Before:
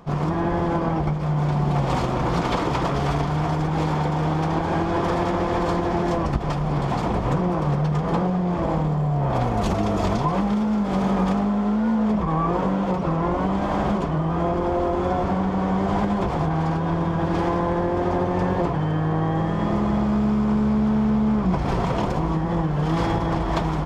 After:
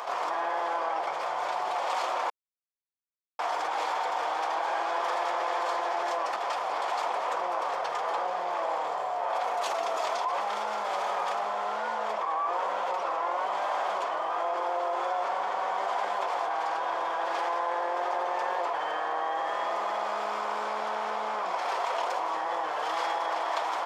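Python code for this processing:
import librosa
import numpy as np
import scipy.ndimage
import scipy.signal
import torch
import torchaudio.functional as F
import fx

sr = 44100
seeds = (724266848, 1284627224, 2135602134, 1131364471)

y = fx.edit(x, sr, fx.silence(start_s=2.3, length_s=1.09), tone=tone)
y = scipy.signal.sosfilt(scipy.signal.butter(4, 620.0, 'highpass', fs=sr, output='sos'), y)
y = fx.env_flatten(y, sr, amount_pct=70)
y = F.gain(torch.from_numpy(y), -6.0).numpy()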